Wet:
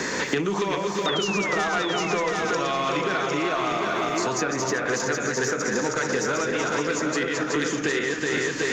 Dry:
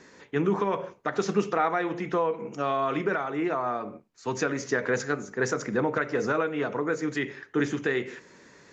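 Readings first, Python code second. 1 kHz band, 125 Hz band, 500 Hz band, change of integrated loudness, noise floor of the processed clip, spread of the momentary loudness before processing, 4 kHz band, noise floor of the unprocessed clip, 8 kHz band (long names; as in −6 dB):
+3.5 dB, +2.0 dB, +2.5 dB, +4.0 dB, −29 dBFS, 5 LU, +14.0 dB, −55 dBFS, can't be measured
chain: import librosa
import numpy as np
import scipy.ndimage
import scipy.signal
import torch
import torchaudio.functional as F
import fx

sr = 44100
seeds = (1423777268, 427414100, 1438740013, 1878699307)

p1 = fx.reverse_delay_fb(x, sr, ms=186, feedback_pct=66, wet_db=-5.5)
p2 = fx.recorder_agc(p1, sr, target_db=-19.5, rise_db_per_s=35.0, max_gain_db=30)
p3 = 10.0 ** (-17.5 / 20.0) * np.tanh(p2 / 10.0 ** (-17.5 / 20.0))
p4 = fx.high_shelf(p3, sr, hz=3300.0, db=11.5)
p5 = fx.spec_paint(p4, sr, seeds[0], shape='fall', start_s=1.06, length_s=0.78, low_hz=1300.0, high_hz=3700.0, level_db=-30.0)
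p6 = fx.low_shelf(p5, sr, hz=140.0, db=-3.0)
p7 = p6 + fx.echo_single(p6, sr, ms=756, db=-6.5, dry=0)
y = fx.band_squash(p7, sr, depth_pct=100)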